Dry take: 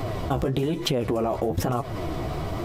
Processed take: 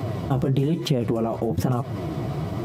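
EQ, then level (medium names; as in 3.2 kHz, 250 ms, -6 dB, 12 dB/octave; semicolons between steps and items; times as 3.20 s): high-pass 110 Hz 12 dB/octave; peaking EQ 140 Hz +10.5 dB 2.1 oct; -3.0 dB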